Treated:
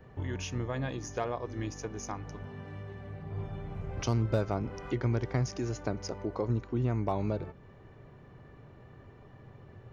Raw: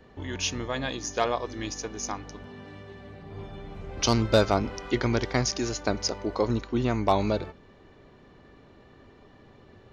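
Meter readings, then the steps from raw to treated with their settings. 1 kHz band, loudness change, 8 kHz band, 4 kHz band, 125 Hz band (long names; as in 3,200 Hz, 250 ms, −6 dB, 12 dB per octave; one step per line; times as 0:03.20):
−9.0 dB, −7.0 dB, −12.0 dB, −15.0 dB, 0.0 dB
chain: dynamic equaliser 290 Hz, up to +6 dB, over −39 dBFS, Q 0.92
downward compressor 2 to 1, threshold −34 dBFS, peak gain reduction 11.5 dB
octave-band graphic EQ 125/250/4,000/8,000 Hz +10/−5/−9/−4 dB
level −1 dB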